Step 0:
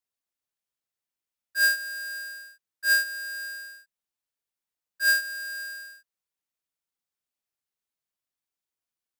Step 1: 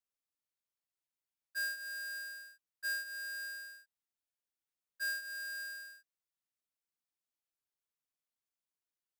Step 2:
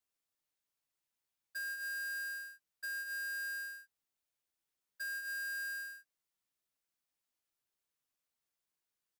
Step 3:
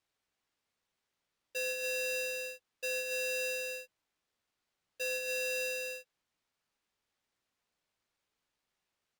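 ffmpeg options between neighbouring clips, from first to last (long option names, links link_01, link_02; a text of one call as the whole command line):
ffmpeg -i in.wav -af "acompressor=threshold=-29dB:ratio=10,volume=-7dB" out.wav
ffmpeg -i in.wav -filter_complex "[0:a]asplit=2[link_01][link_02];[link_02]adelay=15,volume=-8dB[link_03];[link_01][link_03]amix=inputs=2:normalize=0,alimiter=level_in=17.5dB:limit=-24dB:level=0:latency=1:release=172,volume=-17.5dB,volume=3dB" out.wav
ffmpeg -i in.wav -af "aeval=exprs='0.0126*(cos(1*acos(clip(val(0)/0.0126,-1,1)))-cos(1*PI/2))+0.00158*(cos(5*acos(clip(val(0)/0.0126,-1,1)))-cos(5*PI/2))':channel_layout=same,adynamicsmooth=sensitivity=6:basefreq=4800,aeval=exprs='val(0)*sgn(sin(2*PI*1100*n/s))':channel_layout=same,volume=6dB" out.wav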